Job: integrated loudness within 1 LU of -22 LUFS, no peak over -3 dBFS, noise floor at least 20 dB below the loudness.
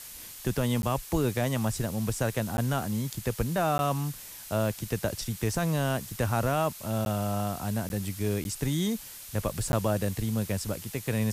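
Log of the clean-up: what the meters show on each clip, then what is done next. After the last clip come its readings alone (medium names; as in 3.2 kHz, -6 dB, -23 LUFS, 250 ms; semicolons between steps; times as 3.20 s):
dropouts 7; longest dropout 11 ms; noise floor -44 dBFS; noise floor target -50 dBFS; loudness -30.0 LUFS; peak level -15.0 dBFS; loudness target -22.0 LUFS
-> interpolate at 0.82/2.57/3.78/7.05/7.89/8.44/9.72 s, 11 ms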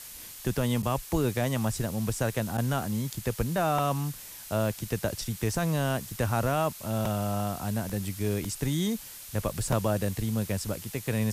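dropouts 0; noise floor -44 dBFS; noise floor target -50 dBFS
-> noise reduction 6 dB, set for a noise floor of -44 dBFS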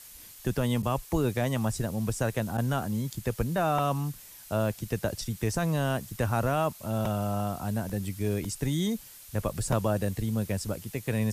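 noise floor -49 dBFS; noise floor target -50 dBFS
-> noise reduction 6 dB, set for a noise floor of -49 dBFS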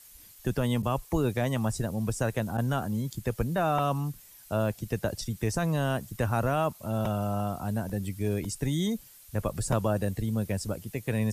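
noise floor -53 dBFS; loudness -30.0 LUFS; peak level -14.0 dBFS; loudness target -22.0 LUFS
-> trim +8 dB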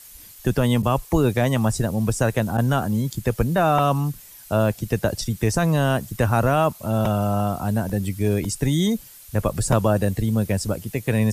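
loudness -22.0 LUFS; peak level -6.0 dBFS; noise floor -45 dBFS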